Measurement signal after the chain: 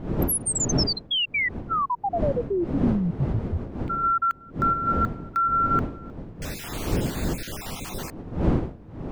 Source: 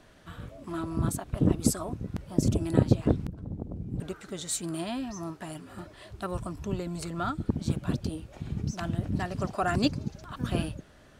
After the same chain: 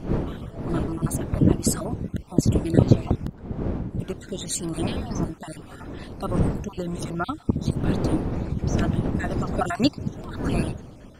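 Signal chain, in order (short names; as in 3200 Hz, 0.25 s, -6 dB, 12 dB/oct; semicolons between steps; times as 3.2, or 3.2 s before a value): random spectral dropouts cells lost 39%; wind noise 270 Hz -35 dBFS; gain +5.5 dB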